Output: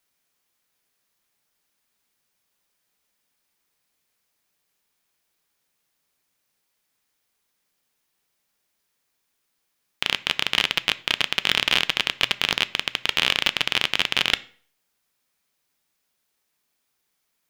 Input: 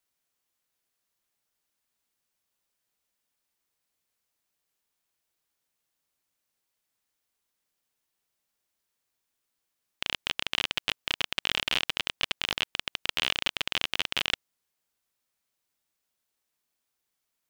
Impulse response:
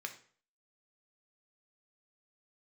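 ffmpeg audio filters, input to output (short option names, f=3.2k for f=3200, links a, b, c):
-filter_complex "[0:a]asplit=2[a][b];[1:a]atrim=start_sample=2205,lowshelf=f=210:g=9[c];[b][c]afir=irnorm=-1:irlink=0,volume=-5dB[d];[a][d]amix=inputs=2:normalize=0,volume=4.5dB"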